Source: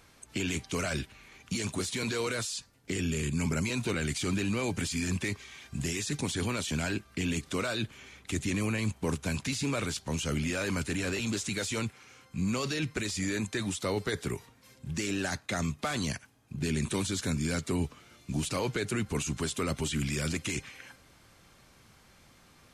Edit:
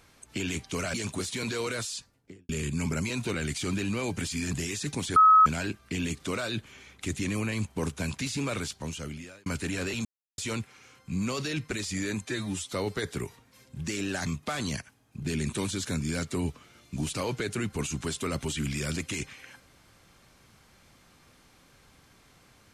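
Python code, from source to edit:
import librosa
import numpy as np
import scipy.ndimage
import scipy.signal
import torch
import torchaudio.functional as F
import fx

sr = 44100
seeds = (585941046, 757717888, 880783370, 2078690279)

y = fx.studio_fade_out(x, sr, start_s=2.55, length_s=0.54)
y = fx.edit(y, sr, fx.cut(start_s=0.94, length_s=0.6),
    fx.cut(start_s=5.13, length_s=0.66),
    fx.bleep(start_s=6.42, length_s=0.3, hz=1280.0, db=-13.5),
    fx.fade_out_span(start_s=9.87, length_s=0.85),
    fx.silence(start_s=11.31, length_s=0.33),
    fx.stretch_span(start_s=13.51, length_s=0.32, factor=1.5),
    fx.cut(start_s=15.36, length_s=0.26), tone=tone)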